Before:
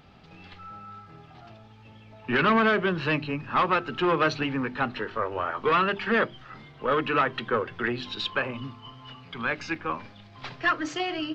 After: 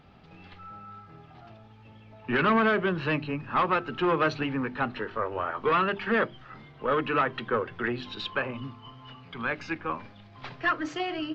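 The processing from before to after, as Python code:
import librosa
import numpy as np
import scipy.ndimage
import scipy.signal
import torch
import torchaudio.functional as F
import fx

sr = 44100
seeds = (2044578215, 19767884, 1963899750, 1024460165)

y = fx.high_shelf(x, sr, hz=4300.0, db=-9.0)
y = y * librosa.db_to_amplitude(-1.0)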